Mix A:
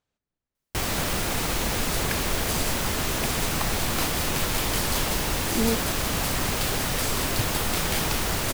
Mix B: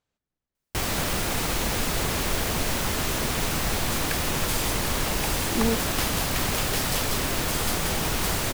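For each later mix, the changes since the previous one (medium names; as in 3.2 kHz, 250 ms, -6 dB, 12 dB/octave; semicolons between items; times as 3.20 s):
second sound: entry +2.00 s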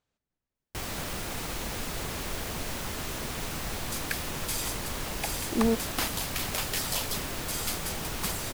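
first sound -8.5 dB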